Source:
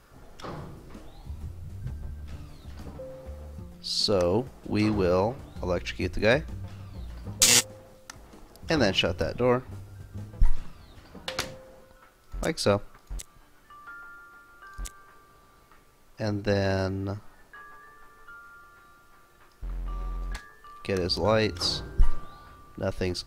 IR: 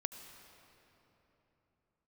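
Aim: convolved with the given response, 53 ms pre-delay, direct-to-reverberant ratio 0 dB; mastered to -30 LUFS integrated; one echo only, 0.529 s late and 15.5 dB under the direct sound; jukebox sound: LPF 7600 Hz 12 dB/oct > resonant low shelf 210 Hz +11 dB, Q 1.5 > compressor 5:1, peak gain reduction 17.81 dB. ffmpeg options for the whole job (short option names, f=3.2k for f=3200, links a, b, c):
-filter_complex "[0:a]aecho=1:1:529:0.168,asplit=2[a][b];[1:a]atrim=start_sample=2205,adelay=53[c];[b][c]afir=irnorm=-1:irlink=0,volume=0.5dB[d];[a][d]amix=inputs=2:normalize=0,lowpass=7.6k,lowshelf=f=210:t=q:w=1.5:g=11,acompressor=threshold=-18dB:ratio=5,volume=-4dB"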